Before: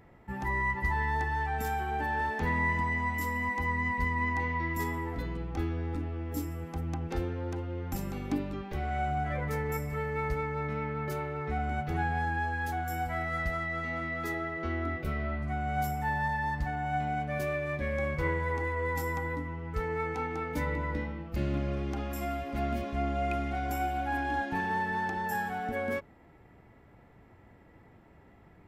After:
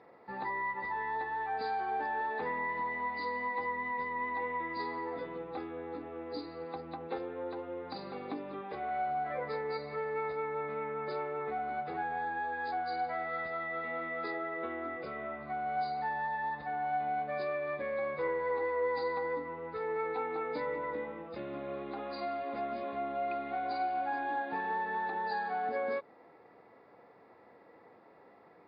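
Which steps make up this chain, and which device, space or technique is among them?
hearing aid with frequency lowering (knee-point frequency compression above 3.4 kHz 4:1; compression 2.5:1, threshold -34 dBFS, peak gain reduction 7 dB; cabinet simulation 300–5600 Hz, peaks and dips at 490 Hz +9 dB, 750 Hz +4 dB, 1.1 kHz +6 dB, 3.1 kHz -7 dB, 4.7 kHz -4 dB); trim -1 dB

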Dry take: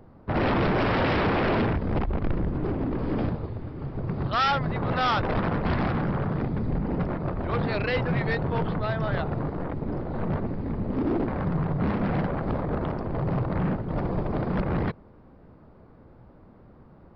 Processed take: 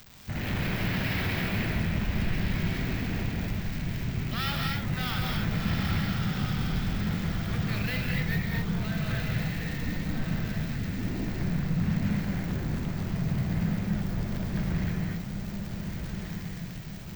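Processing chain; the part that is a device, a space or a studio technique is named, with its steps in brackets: 9.82–10.22 s: comb 3.8 ms, depth 95%; high-order bell 620 Hz -12.5 dB 2.5 oct; echo that smears into a reverb 1390 ms, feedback 47%, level -5 dB; budget class-D amplifier (dead-time distortion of 0.052 ms; zero-crossing glitches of -25 dBFS); gated-style reverb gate 280 ms rising, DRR -0.5 dB; trim -4.5 dB

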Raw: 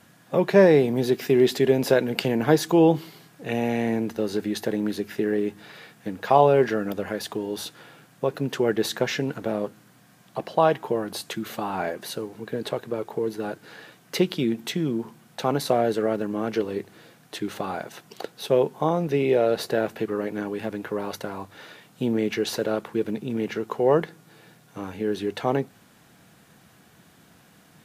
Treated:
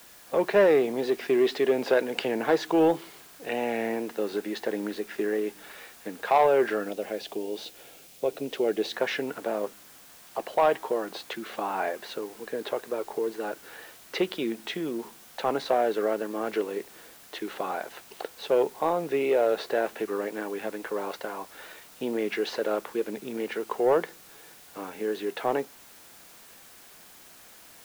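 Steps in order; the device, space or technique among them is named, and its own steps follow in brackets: tape answering machine (band-pass 370–3400 Hz; saturation -12.5 dBFS, distortion -17 dB; wow and flutter; white noise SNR 23 dB); 6.88–8.93 s: high-order bell 1.3 kHz -9 dB 1.3 oct

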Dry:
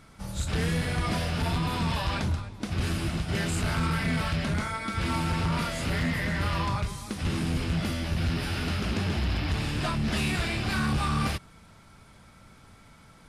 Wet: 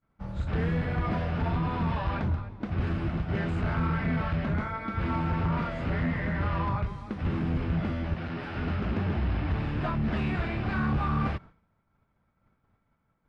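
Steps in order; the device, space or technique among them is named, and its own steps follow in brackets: 8.14–8.55 s: high-pass 290 Hz 6 dB/octave; hearing-loss simulation (low-pass 1.7 kHz 12 dB/octave; expander -41 dBFS)

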